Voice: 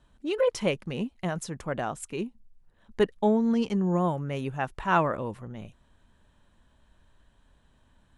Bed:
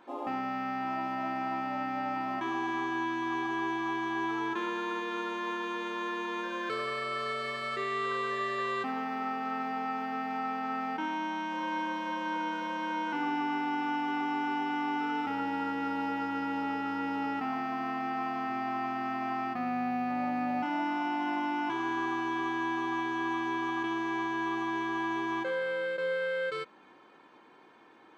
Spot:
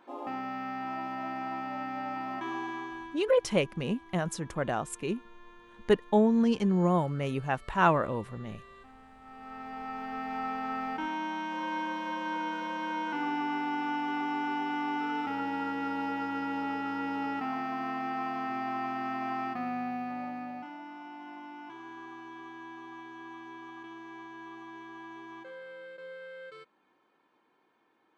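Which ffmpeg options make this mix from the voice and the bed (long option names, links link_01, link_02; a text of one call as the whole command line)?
ffmpeg -i stem1.wav -i stem2.wav -filter_complex "[0:a]adelay=2900,volume=0dB[link_01];[1:a]volume=17.5dB,afade=type=out:start_time=2.55:duration=0.7:silence=0.125893,afade=type=in:start_time=9.21:duration=1.22:silence=0.1,afade=type=out:start_time=19.45:duration=1.33:silence=0.223872[link_02];[link_01][link_02]amix=inputs=2:normalize=0" out.wav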